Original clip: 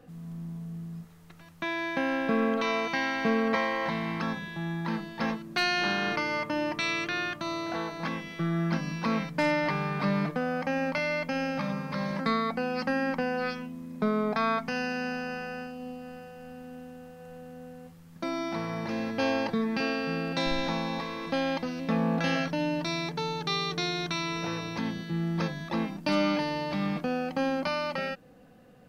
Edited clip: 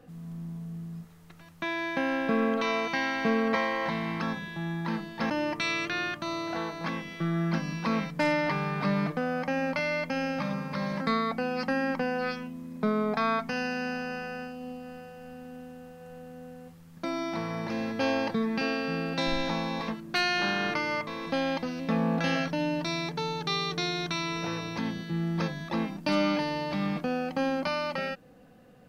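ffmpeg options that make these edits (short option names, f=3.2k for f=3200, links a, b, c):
-filter_complex "[0:a]asplit=4[a][b][c][d];[a]atrim=end=5.302[e];[b]atrim=start=6.488:end=21.072[f];[c]atrim=start=5.298:end=6.492[g];[d]atrim=start=21.068[h];[e][f]acrossfade=d=0.004:c1=hsin:c2=hsin[i];[i][g]acrossfade=d=0.004:c1=hsin:c2=hsin[j];[j][h]acrossfade=d=0.004:c1=hsin:c2=hsin"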